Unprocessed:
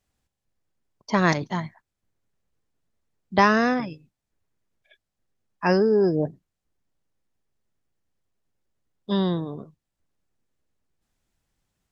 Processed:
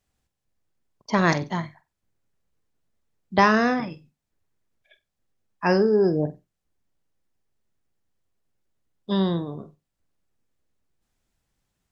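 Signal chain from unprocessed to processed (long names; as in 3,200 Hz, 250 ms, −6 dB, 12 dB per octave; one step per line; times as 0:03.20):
flutter between parallel walls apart 8 metres, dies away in 0.22 s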